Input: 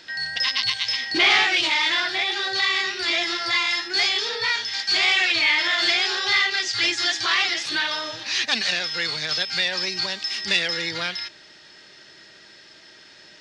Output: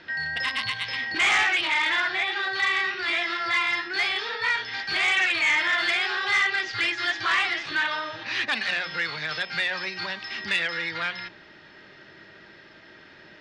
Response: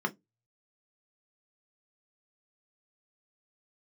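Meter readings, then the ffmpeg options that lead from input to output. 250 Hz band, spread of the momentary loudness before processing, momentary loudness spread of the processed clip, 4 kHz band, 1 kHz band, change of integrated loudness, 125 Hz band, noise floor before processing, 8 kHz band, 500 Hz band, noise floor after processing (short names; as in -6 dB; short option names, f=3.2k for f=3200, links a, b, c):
-5.0 dB, 8 LU, 9 LU, -8.0 dB, 0.0 dB, -3.5 dB, -1.5 dB, -49 dBFS, -8.5 dB, -4.0 dB, -50 dBFS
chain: -filter_complex "[0:a]lowpass=2.3k,tiltshelf=f=760:g=6.5,bandreject=f=59.62:t=h:w=4,bandreject=f=119.24:t=h:w=4,bandreject=f=178.86:t=h:w=4,bandreject=f=238.48:t=h:w=4,bandreject=f=298.1:t=h:w=4,bandreject=f=357.72:t=h:w=4,bandreject=f=417.34:t=h:w=4,bandreject=f=476.96:t=h:w=4,bandreject=f=536.58:t=h:w=4,bandreject=f=596.2:t=h:w=4,bandreject=f=655.82:t=h:w=4,bandreject=f=715.44:t=h:w=4,bandreject=f=775.06:t=h:w=4,bandreject=f=834.68:t=h:w=4,bandreject=f=894.3:t=h:w=4,bandreject=f=953.92:t=h:w=4,bandreject=f=1.01354k:t=h:w=4,bandreject=f=1.07316k:t=h:w=4,bandreject=f=1.13278k:t=h:w=4,acrossover=split=1000[a][b];[a]acompressor=threshold=-40dB:ratio=6[c];[b]aeval=exprs='0.141*sin(PI/2*1.58*val(0)/0.141)':c=same[d];[c][d]amix=inputs=2:normalize=0"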